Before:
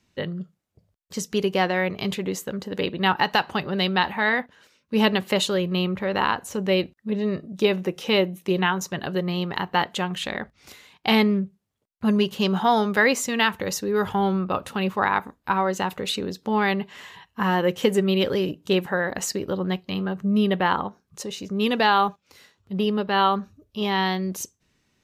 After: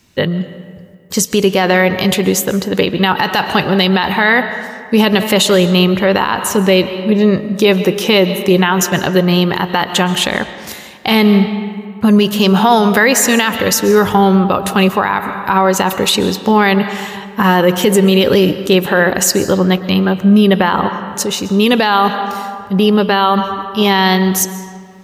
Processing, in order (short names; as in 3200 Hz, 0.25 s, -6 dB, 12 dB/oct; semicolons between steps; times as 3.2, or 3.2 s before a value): high shelf 8800 Hz +10 dB; digital reverb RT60 2 s, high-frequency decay 0.6×, pre-delay 90 ms, DRR 13.5 dB; maximiser +15 dB; gain -1 dB